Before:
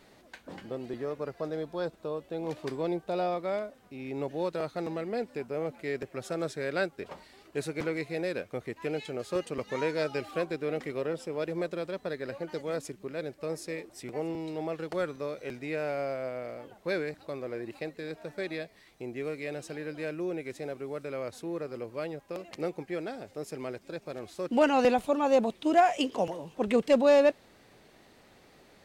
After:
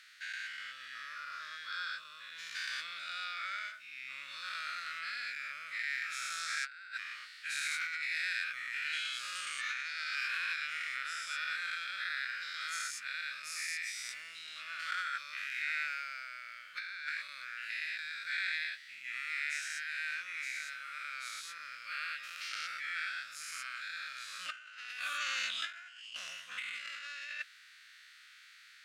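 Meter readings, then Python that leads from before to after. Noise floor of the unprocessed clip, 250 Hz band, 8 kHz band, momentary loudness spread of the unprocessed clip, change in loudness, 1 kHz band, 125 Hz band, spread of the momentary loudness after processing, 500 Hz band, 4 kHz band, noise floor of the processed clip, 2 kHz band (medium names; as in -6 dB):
-59 dBFS, under -40 dB, +5.0 dB, 14 LU, -6.0 dB, -10.5 dB, under -35 dB, 10 LU, under -35 dB, +5.0 dB, -58 dBFS, +5.5 dB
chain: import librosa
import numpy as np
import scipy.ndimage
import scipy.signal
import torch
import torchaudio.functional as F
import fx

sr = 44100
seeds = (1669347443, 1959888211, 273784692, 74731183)

y = fx.spec_dilate(x, sr, span_ms=240)
y = scipy.signal.sosfilt(scipy.signal.ellip(4, 1.0, 40, 1400.0, 'highpass', fs=sr, output='sos'), y)
y = fx.high_shelf(y, sr, hz=8800.0, db=-11.5)
y = fx.over_compress(y, sr, threshold_db=-37.0, ratio=-0.5)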